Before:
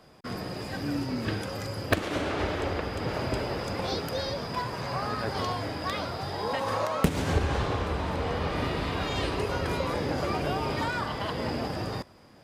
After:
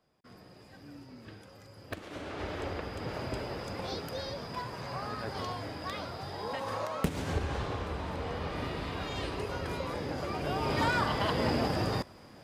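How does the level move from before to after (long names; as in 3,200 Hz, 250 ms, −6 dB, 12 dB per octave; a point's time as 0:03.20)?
0:01.69 −18.5 dB
0:02.59 −6.5 dB
0:10.33 −6.5 dB
0:10.88 +2 dB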